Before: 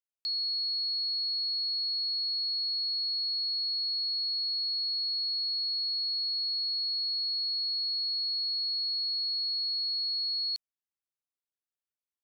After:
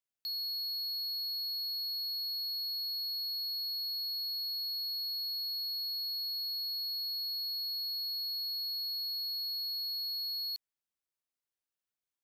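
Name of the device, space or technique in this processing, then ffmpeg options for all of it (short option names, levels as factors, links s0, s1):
limiter into clipper: -af "alimiter=level_in=2.11:limit=0.0631:level=0:latency=1,volume=0.473,asoftclip=type=hard:threshold=0.0168"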